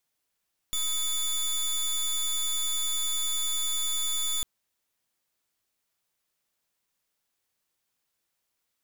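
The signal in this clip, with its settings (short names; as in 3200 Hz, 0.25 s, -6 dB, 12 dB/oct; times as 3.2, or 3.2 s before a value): pulse 3490 Hz, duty 19% -28 dBFS 3.70 s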